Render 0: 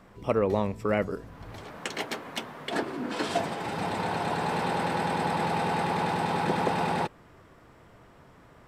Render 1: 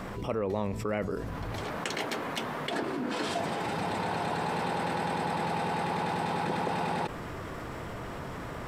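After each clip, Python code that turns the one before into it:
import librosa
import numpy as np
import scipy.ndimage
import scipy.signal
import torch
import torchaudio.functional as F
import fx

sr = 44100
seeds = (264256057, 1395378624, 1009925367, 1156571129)

y = fx.env_flatten(x, sr, amount_pct=70)
y = y * 10.0 ** (-7.5 / 20.0)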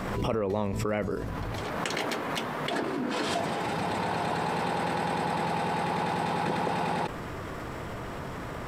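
y = fx.pre_swell(x, sr, db_per_s=27.0)
y = y * 10.0 ** (1.5 / 20.0)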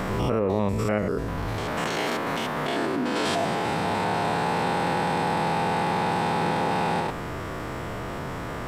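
y = fx.spec_steps(x, sr, hold_ms=100)
y = y * 10.0 ** (6.0 / 20.0)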